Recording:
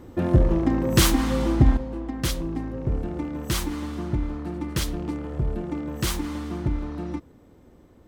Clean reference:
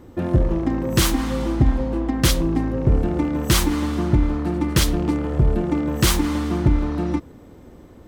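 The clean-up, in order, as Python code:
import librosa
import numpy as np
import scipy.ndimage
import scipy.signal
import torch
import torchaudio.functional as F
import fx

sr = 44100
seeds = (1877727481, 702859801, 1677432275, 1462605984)

y = fx.gain(x, sr, db=fx.steps((0.0, 0.0), (1.77, 8.5)))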